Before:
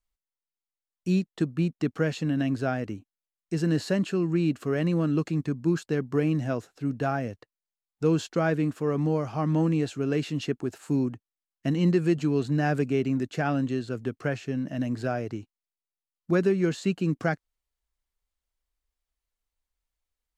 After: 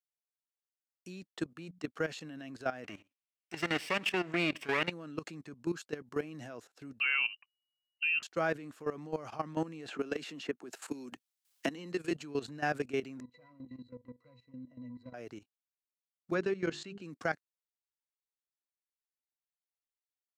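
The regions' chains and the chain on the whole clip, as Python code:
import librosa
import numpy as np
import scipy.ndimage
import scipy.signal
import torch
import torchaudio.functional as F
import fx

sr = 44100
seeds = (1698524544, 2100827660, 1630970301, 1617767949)

y = fx.chain(x, sr, fx.highpass(hz=46.0, slope=12),
    fx.low_shelf(hz=64.0, db=-7.0),
    fx.hum_notches(base_hz=60, count=3), at=(1.44, 1.84))
y = fx.chain(y, sr, fx.lower_of_two(delay_ms=0.37),
    fx.peak_eq(hz=2200.0, db=13.0, octaves=2.2),
    fx.echo_single(ms=90, db=-22.0), at=(2.84, 4.91))
y = fx.chain(y, sr, fx.low_shelf(hz=77.0, db=10.0),
    fx.freq_invert(carrier_hz=2900), at=(7.0, 8.23))
y = fx.chain(y, sr, fx.highpass(hz=170.0, slope=24),
    fx.band_squash(depth_pct=100), at=(9.88, 12.11))
y = fx.chain(y, sr, fx.clip_hard(threshold_db=-23.5),
    fx.high_shelf(hz=2800.0, db=5.5),
    fx.octave_resonator(note='B', decay_s=0.17), at=(13.2, 15.14))
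y = fx.chain(y, sr, fx.lowpass(hz=5600.0, slope=12),
    fx.low_shelf(hz=82.0, db=9.5),
    fx.hum_notches(base_hz=50, count=8), at=(16.34, 17.02))
y = fx.highpass(y, sr, hz=640.0, slope=6)
y = fx.level_steps(y, sr, step_db=15)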